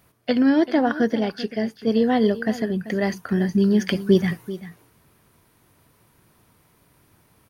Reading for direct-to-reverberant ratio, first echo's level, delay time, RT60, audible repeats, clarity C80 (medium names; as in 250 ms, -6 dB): no reverb, -15.0 dB, 388 ms, no reverb, 1, no reverb